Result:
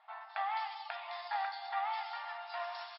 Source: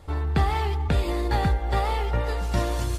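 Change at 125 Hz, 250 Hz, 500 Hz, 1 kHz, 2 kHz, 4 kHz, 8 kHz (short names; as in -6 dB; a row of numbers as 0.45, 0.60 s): under -40 dB, under -40 dB, -17.5 dB, -7.0 dB, -8.0 dB, -10.0 dB, under -40 dB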